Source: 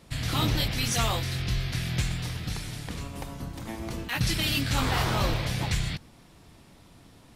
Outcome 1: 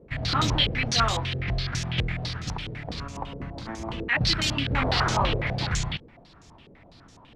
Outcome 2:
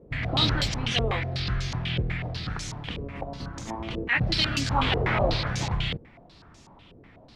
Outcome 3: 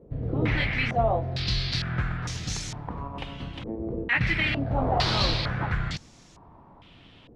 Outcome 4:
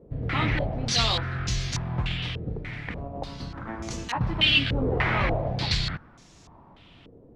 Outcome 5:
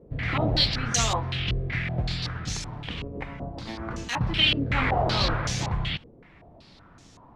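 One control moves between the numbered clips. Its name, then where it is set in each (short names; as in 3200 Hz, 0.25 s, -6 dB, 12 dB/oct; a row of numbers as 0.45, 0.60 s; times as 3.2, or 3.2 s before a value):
stepped low-pass, rate: 12, 8.1, 2.2, 3.4, 5.3 Hz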